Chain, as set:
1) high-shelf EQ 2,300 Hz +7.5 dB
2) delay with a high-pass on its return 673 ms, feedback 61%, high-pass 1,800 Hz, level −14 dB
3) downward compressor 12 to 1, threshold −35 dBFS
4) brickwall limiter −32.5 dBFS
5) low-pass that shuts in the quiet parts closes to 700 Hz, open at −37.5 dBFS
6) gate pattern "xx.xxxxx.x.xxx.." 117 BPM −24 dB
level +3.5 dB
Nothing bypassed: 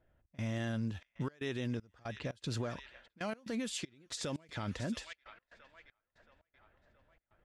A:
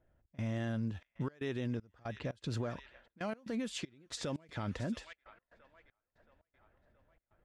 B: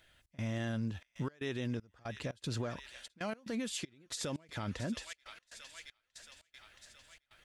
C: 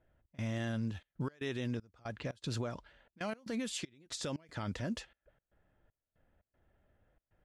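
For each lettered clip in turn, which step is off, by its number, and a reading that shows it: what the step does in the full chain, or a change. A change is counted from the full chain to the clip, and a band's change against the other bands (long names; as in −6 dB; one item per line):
1, 8 kHz band −4.0 dB
5, 8 kHz band +1.5 dB
2, change in momentary loudness spread −8 LU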